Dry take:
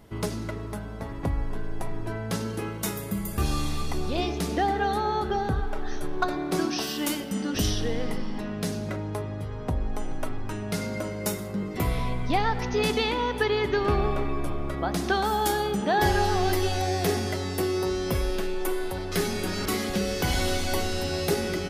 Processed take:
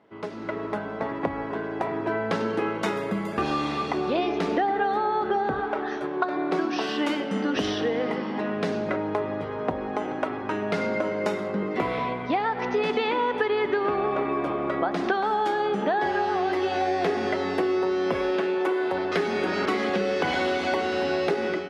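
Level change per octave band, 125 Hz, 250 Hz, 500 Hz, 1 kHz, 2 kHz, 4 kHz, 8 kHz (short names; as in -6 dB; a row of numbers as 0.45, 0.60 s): -8.5 dB, +2.0 dB, +3.5 dB, +3.0 dB, +3.0 dB, -3.0 dB, under -10 dB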